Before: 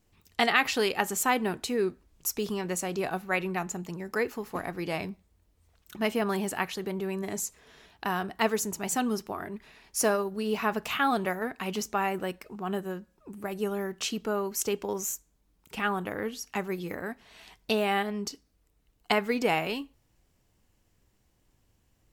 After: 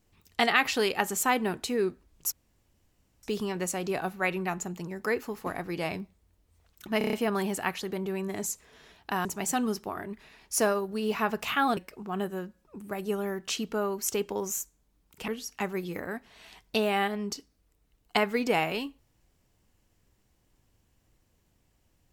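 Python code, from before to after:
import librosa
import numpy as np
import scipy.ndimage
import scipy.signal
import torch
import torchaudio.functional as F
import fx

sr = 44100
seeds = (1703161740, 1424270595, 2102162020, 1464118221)

y = fx.edit(x, sr, fx.insert_room_tone(at_s=2.32, length_s=0.91),
    fx.stutter(start_s=6.07, slice_s=0.03, count=6),
    fx.cut(start_s=8.19, length_s=0.49),
    fx.cut(start_s=11.2, length_s=1.1),
    fx.cut(start_s=15.81, length_s=0.42), tone=tone)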